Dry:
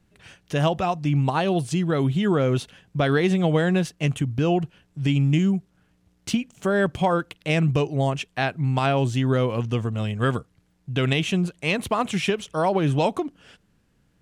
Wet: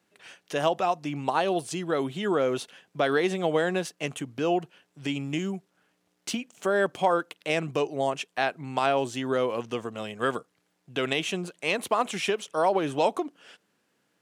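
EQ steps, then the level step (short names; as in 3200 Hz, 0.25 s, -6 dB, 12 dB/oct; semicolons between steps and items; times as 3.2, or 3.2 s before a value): HPF 370 Hz 12 dB/oct; dynamic EQ 2600 Hz, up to -3 dB, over -41 dBFS, Q 0.74; 0.0 dB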